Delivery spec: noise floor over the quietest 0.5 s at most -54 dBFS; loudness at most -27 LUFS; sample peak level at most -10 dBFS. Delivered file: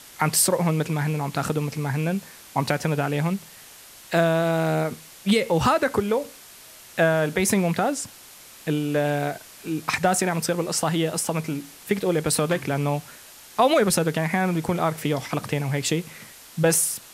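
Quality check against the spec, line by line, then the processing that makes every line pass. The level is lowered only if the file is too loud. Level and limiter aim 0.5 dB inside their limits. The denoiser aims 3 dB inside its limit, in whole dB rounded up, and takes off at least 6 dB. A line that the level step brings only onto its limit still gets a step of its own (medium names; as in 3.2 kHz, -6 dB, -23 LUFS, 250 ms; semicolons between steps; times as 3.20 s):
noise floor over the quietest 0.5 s -46 dBFS: fail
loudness -23.5 LUFS: fail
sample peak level -6.0 dBFS: fail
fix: noise reduction 7 dB, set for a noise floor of -46 dBFS; trim -4 dB; peak limiter -10.5 dBFS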